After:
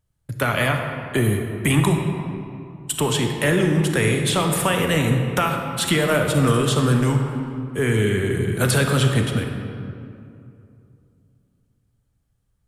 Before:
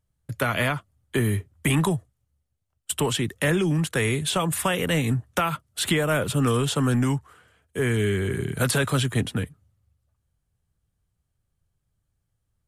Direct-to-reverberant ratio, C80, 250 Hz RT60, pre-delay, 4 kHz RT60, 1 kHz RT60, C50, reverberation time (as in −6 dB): 3.0 dB, 5.0 dB, 2.9 s, 30 ms, 1.4 s, 2.5 s, 4.0 dB, 2.6 s